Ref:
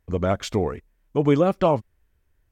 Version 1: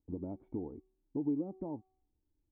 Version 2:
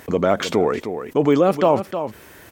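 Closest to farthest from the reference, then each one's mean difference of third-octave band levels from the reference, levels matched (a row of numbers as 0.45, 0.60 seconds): 2, 1; 5.0, 9.5 decibels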